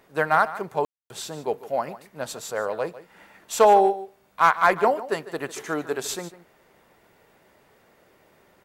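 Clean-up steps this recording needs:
clipped peaks rebuilt −6.5 dBFS
ambience match 0:00.85–0:01.10
echo removal 149 ms −15.5 dB

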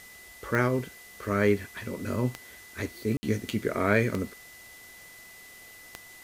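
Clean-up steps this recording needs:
click removal
notch filter 2,000 Hz, Q 30
ambience match 0:03.17–0:03.23
broadband denoise 24 dB, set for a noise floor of −49 dBFS

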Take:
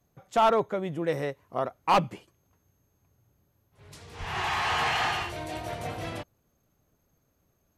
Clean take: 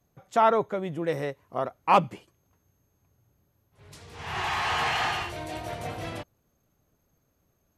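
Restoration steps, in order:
clipped peaks rebuilt −15.5 dBFS
0:04.19–0:04.31: high-pass filter 140 Hz 24 dB per octave

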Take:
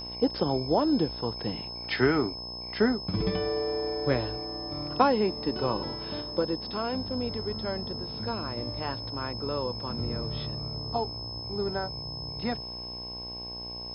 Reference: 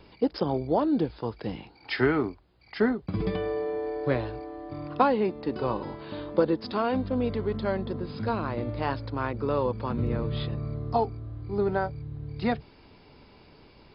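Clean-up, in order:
hum removal 60.3 Hz, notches 18
notch filter 5,200 Hz, Q 30
level correction +5 dB, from 0:06.21

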